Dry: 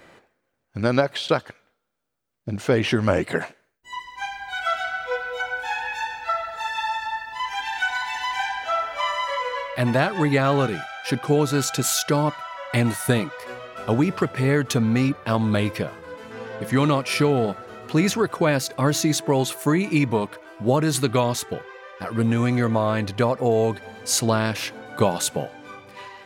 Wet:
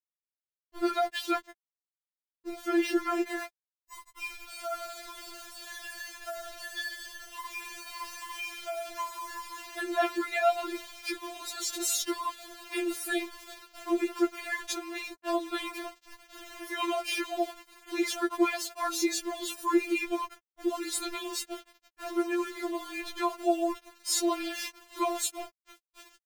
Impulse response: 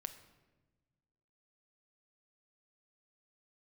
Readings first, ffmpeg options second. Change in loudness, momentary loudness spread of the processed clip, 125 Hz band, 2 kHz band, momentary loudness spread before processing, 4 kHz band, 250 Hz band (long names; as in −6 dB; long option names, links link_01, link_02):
−9.0 dB, 14 LU, below −40 dB, −9.5 dB, 13 LU, −7.0 dB, −9.5 dB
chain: -af "aeval=exprs='val(0)*gte(abs(val(0)),0.0251)':channel_layout=same,afftfilt=real='re*4*eq(mod(b,16),0)':imag='im*4*eq(mod(b,16),0)':win_size=2048:overlap=0.75,volume=-4dB"